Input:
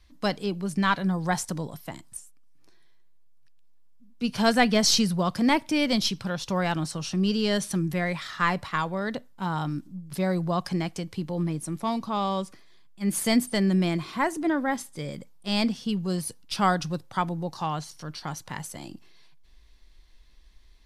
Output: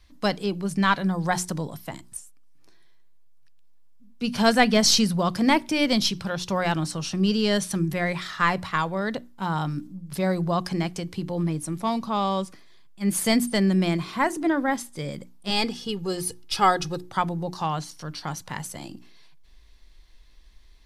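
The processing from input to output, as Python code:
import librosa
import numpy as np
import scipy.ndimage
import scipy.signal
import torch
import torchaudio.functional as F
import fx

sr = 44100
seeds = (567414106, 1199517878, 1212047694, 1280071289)

y = fx.comb(x, sr, ms=2.4, depth=0.6, at=(15.5, 17.09))
y = fx.hum_notches(y, sr, base_hz=60, count=6)
y = y * librosa.db_to_amplitude(2.5)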